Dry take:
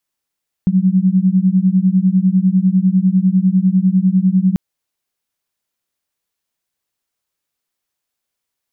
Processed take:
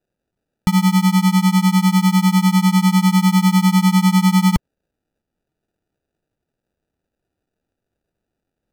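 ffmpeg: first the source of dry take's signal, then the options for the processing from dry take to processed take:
-f lavfi -i "aevalsrc='0.224*(sin(2*PI*182*t)+sin(2*PI*192*t))':d=3.89:s=44100"
-af "asubboost=boost=4.5:cutoff=110,acrusher=samples=41:mix=1:aa=0.000001"

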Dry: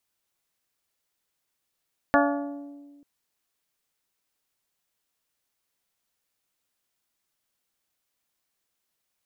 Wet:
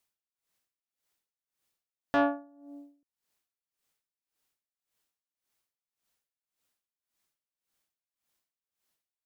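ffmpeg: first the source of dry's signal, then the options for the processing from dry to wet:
-f lavfi -i "aevalsrc='0.0944*pow(10,-3*t/1.72)*sin(2*PI*286*t)+0.0891*pow(10,-3*t/1.059)*sin(2*PI*572*t)+0.0841*pow(10,-3*t/0.932)*sin(2*PI*686.4*t)+0.0794*pow(10,-3*t/0.797)*sin(2*PI*858*t)+0.075*pow(10,-3*t/0.652)*sin(2*PI*1144*t)+0.0708*pow(10,-3*t/0.558)*sin(2*PI*1430*t)+0.0668*pow(10,-3*t/0.491)*sin(2*PI*1716*t)':d=0.89:s=44100"
-af "asoftclip=type=tanh:threshold=-15.5dB,aeval=exprs='val(0)*pow(10,-22*(0.5-0.5*cos(2*PI*1.8*n/s))/20)':c=same"

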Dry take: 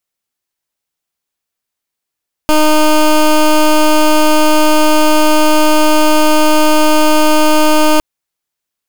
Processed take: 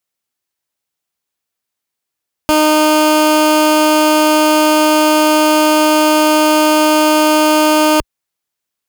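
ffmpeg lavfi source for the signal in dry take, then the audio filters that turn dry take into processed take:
-f lavfi -i "aevalsrc='0.398*(2*lt(mod(307*t,1),0.16)-1)':d=5.51:s=44100"
-af "highpass=43"

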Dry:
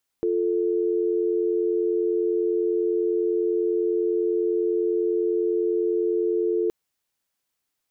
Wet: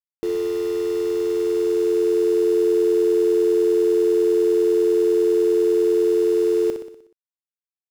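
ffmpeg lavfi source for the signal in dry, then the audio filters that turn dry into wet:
-f lavfi -i "aevalsrc='0.0708*(sin(2*PI*350*t)+sin(2*PI*440*t))':d=6.47:s=44100"
-af "dynaudnorm=f=670:g=5:m=6dB,aeval=exprs='val(0)*gte(abs(val(0)),0.0266)':c=same,aecho=1:1:61|122|183|244|305|366|427:0.398|0.219|0.12|0.0662|0.0364|0.02|0.011"

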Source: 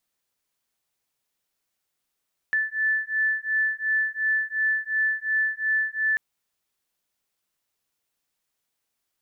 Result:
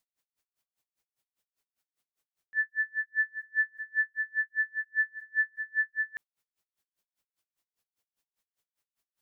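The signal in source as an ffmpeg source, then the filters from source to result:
-f lavfi -i "aevalsrc='0.0562*(sin(2*PI*1750*t)+sin(2*PI*1752.8*t))':d=3.64:s=44100"
-af "aeval=exprs='val(0)*pow(10,-37*(0.5-0.5*cos(2*PI*5*n/s))/20)':c=same"

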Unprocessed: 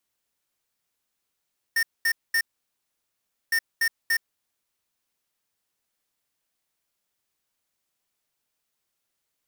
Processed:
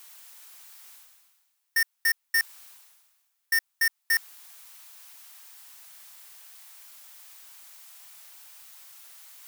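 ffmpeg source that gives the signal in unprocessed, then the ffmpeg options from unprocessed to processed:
-f lavfi -i "aevalsrc='0.0794*(2*lt(mod(1820*t,1),0.5)-1)*clip(min(mod(mod(t,1.76),0.29),0.07-mod(mod(t,1.76),0.29))/0.005,0,1)*lt(mod(t,1.76),0.87)':d=3.52:s=44100"
-af "highpass=f=730:w=0.5412,highpass=f=730:w=1.3066,highshelf=f=10k:g=5.5,areverse,acompressor=mode=upward:threshold=-27dB:ratio=2.5,areverse"

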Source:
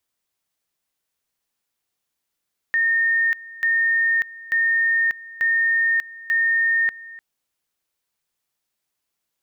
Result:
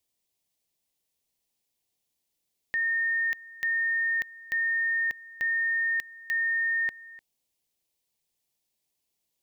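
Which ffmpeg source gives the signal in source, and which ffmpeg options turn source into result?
-f lavfi -i "aevalsrc='pow(10,(-16-20*gte(mod(t,0.89),0.59))/20)*sin(2*PI*1830*t)':d=4.45:s=44100"
-af "equalizer=f=1.4k:t=o:w=0.83:g=-14.5"

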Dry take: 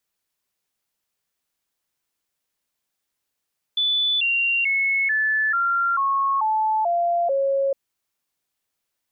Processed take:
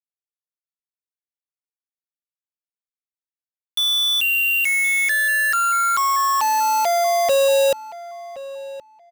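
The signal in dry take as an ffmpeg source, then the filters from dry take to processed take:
-f lavfi -i "aevalsrc='0.126*clip(min(mod(t,0.44),0.44-mod(t,0.44))/0.005,0,1)*sin(2*PI*3480*pow(2,-floor(t/0.44)/3)*mod(t,0.44))':d=3.96:s=44100"
-filter_complex "[0:a]lowshelf=f=480:g=11.5,acrusher=bits=3:mix=0:aa=0.000001,asplit=2[a][b];[b]adelay=1071,lowpass=f=2.5k:p=1,volume=-16dB,asplit=2[c][d];[d]adelay=1071,lowpass=f=2.5k:p=1,volume=0.18[e];[a][c][e]amix=inputs=3:normalize=0"

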